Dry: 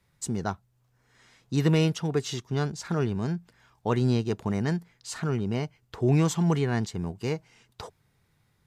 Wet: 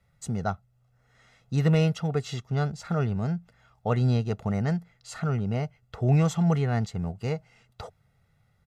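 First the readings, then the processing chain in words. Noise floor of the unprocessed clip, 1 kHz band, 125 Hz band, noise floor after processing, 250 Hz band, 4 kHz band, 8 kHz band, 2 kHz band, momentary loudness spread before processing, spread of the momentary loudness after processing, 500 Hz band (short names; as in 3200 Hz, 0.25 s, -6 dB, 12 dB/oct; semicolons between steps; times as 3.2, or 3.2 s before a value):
-69 dBFS, +1.0 dB, +2.0 dB, -67 dBFS, -1.0 dB, -4.0 dB, -5.5 dB, -1.0 dB, 13 LU, 13 LU, -1.5 dB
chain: high shelf 3100 Hz -8.5 dB; comb 1.5 ms, depth 64%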